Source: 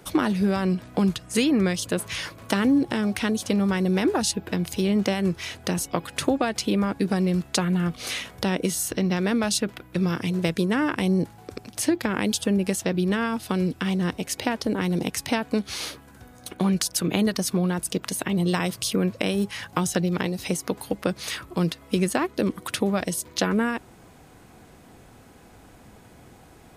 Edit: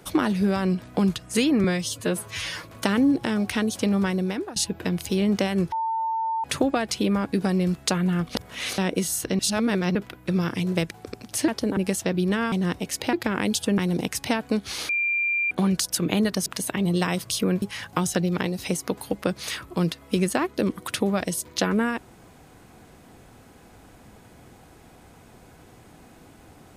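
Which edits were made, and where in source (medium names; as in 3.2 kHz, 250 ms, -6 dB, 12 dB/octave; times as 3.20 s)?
1.64–2.30 s: stretch 1.5×
3.72–4.23 s: fade out, to -18 dB
5.39–6.11 s: bleep 898 Hz -23 dBFS
8.02–8.45 s: reverse
9.06–9.62 s: reverse
10.58–11.35 s: delete
11.92–12.57 s: swap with 14.51–14.80 s
13.32–13.90 s: delete
15.91–16.53 s: bleep 2.38 kHz -21 dBFS
17.48–17.98 s: delete
19.14–19.42 s: delete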